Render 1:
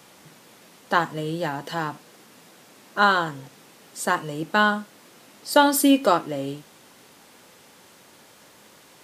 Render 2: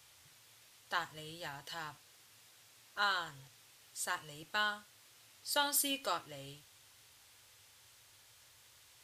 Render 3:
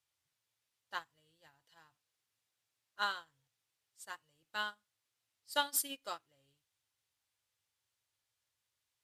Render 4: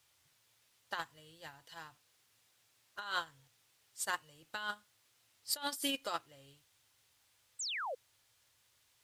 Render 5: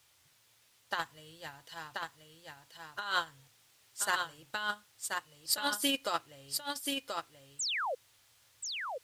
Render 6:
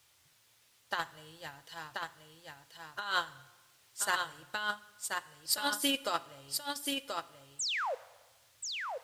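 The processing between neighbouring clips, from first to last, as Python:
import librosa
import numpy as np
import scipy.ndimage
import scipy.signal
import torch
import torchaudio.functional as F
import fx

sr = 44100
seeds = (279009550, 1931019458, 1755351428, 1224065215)

y1 = fx.curve_eq(x, sr, hz=(110.0, 180.0, 3400.0), db=(0, -25, -4))
y1 = F.gain(torch.from_numpy(y1), -4.0).numpy()
y2 = fx.upward_expand(y1, sr, threshold_db=-46.0, expansion=2.5)
y2 = F.gain(torch.from_numpy(y2), 1.5).numpy()
y3 = fx.over_compress(y2, sr, threshold_db=-46.0, ratio=-1.0)
y3 = fx.spec_paint(y3, sr, seeds[0], shape='fall', start_s=7.59, length_s=0.36, low_hz=460.0, high_hz=8500.0, level_db=-46.0)
y3 = F.gain(torch.from_numpy(y3), 7.0).numpy()
y4 = y3 + 10.0 ** (-4.5 / 20.0) * np.pad(y3, (int(1032 * sr / 1000.0), 0))[:len(y3)]
y4 = F.gain(torch.from_numpy(y4), 5.0).numpy()
y5 = fx.rev_plate(y4, sr, seeds[1], rt60_s=1.2, hf_ratio=0.8, predelay_ms=0, drr_db=16.5)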